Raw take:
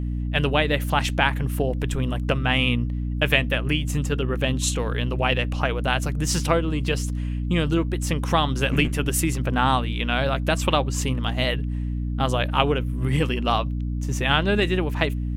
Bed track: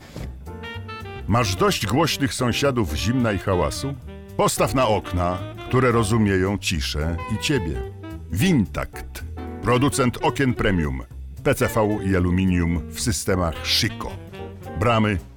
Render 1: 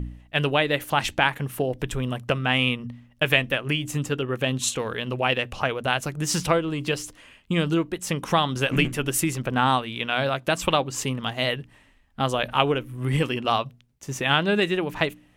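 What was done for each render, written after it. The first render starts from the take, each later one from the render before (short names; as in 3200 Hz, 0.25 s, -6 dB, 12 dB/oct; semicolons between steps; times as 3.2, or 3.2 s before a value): de-hum 60 Hz, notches 5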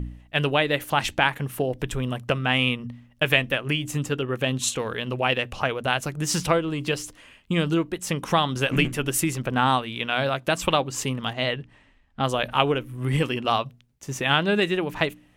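11.33–12.24 air absorption 73 m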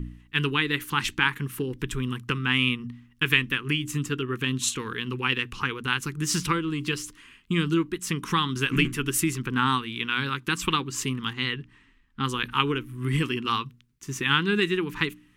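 Chebyshev band-stop 370–1100 Hz, order 2; bell 77 Hz -5 dB 0.94 oct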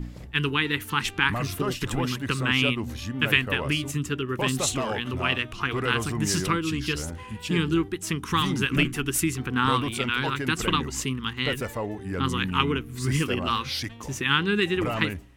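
add bed track -11 dB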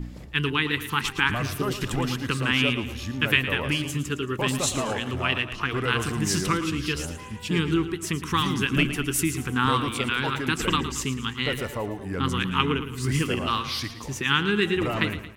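feedback echo 0.112 s, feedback 46%, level -12 dB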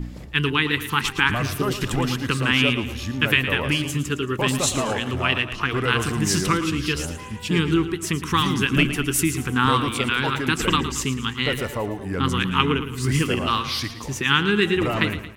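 gain +3.5 dB; limiter -2 dBFS, peak gain reduction 2.5 dB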